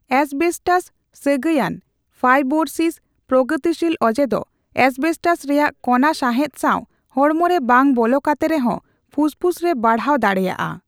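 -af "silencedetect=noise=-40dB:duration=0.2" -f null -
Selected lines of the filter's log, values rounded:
silence_start: 0.88
silence_end: 1.15 | silence_duration: 0.28
silence_start: 1.79
silence_end: 2.20 | silence_duration: 0.41
silence_start: 2.96
silence_end: 3.29 | silence_duration: 0.33
silence_start: 4.43
silence_end: 4.76 | silence_duration: 0.32
silence_start: 6.84
silence_end: 7.10 | silence_duration: 0.26
silence_start: 8.79
silence_end: 9.13 | silence_duration: 0.34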